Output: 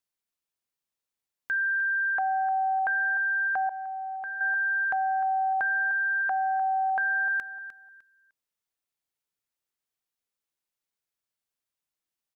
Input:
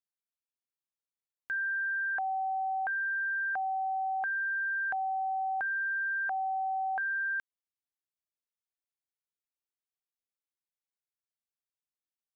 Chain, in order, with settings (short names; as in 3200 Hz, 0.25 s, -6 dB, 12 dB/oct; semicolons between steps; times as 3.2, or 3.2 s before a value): feedback echo 0.303 s, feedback 23%, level -13 dB; 3.69–4.41 expander -25 dBFS; gain +5.5 dB